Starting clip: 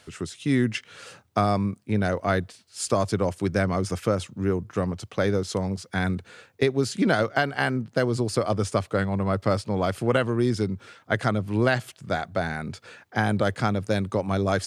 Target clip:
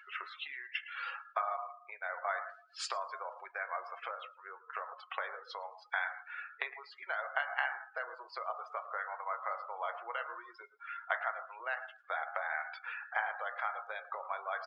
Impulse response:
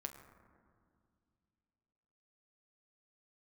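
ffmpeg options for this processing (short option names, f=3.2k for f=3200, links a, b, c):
-filter_complex "[0:a]lowpass=2.8k,acompressor=threshold=-33dB:ratio=12,highpass=f=820:w=0.5412,highpass=f=820:w=1.3066,aecho=1:1:112|224|336|448:0.2|0.0938|0.0441|0.0207[a];[1:a]atrim=start_sample=2205,afade=t=out:st=0.22:d=0.01,atrim=end_sample=10143[b];[a][b]afir=irnorm=-1:irlink=0,acompressor=mode=upward:threshold=-57dB:ratio=2.5,afftdn=nr=29:nf=-55,volume=10.5dB"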